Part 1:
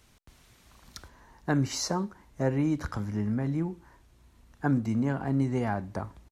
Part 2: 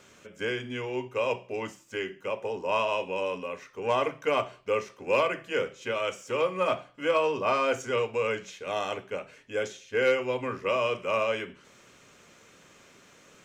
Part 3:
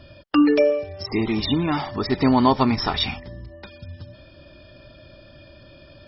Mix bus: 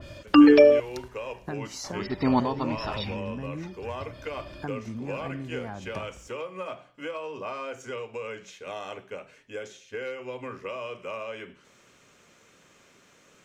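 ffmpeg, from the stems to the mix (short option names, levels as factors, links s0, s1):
-filter_complex "[0:a]acompressor=threshold=0.0178:ratio=6,volume=1.19,asplit=2[s0][s1];[1:a]acompressor=threshold=0.0316:ratio=5,volume=0.75[s2];[2:a]volume=1.33,asplit=3[s3][s4][s5];[s3]atrim=end=0.8,asetpts=PTS-STARTPTS,afade=t=out:st=0.796:d=0.004:c=hsin[s6];[s4]atrim=start=0.8:end=1.84,asetpts=PTS-STARTPTS,volume=0[s7];[s5]atrim=start=1.84,asetpts=PTS-STARTPTS,afade=t=in:d=0.004:c=hsin[s8];[s6][s7][s8]concat=n=3:v=0:a=1[s9];[s1]apad=whole_len=268058[s10];[s9][s10]sidechaincompress=threshold=0.00501:ratio=12:attack=42:release=756[s11];[s0][s2][s11]amix=inputs=3:normalize=0,adynamicequalizer=threshold=0.00631:dfrequency=3200:dqfactor=0.7:tfrequency=3200:tqfactor=0.7:attack=5:release=100:ratio=0.375:range=2:mode=cutabove:tftype=highshelf"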